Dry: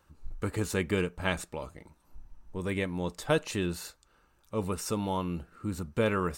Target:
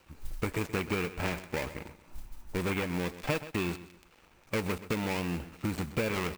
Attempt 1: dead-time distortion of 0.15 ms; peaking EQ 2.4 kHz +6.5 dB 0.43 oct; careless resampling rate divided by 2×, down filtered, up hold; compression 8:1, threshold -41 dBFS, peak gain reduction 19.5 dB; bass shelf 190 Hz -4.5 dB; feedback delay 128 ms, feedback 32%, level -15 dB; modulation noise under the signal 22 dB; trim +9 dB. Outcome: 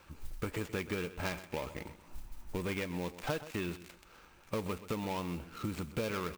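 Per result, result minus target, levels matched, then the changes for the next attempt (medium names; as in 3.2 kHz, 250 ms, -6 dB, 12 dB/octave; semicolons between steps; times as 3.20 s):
compression: peak gain reduction +5.5 dB; dead-time distortion: distortion -5 dB
change: compression 8:1, threshold -35 dBFS, peak gain reduction 14.5 dB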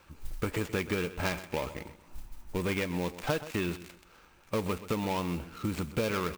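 dead-time distortion: distortion -5 dB
change: dead-time distortion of 0.36 ms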